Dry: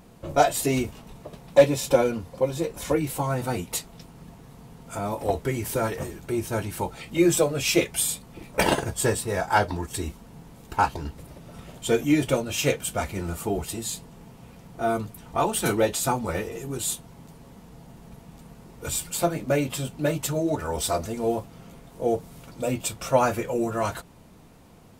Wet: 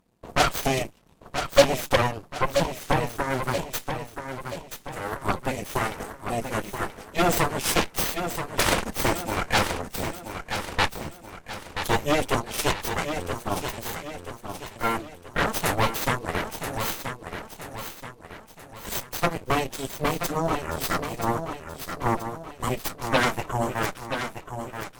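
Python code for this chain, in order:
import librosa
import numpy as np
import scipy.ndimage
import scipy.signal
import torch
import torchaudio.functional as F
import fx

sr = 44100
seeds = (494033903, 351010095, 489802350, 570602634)

p1 = fx.cheby_harmonics(x, sr, harmonics=(3, 5, 7, 8), levels_db=(-11, -27, -28, -12), full_scale_db=-6.0)
y = p1 + fx.echo_feedback(p1, sr, ms=979, feedback_pct=45, wet_db=-8.0, dry=0)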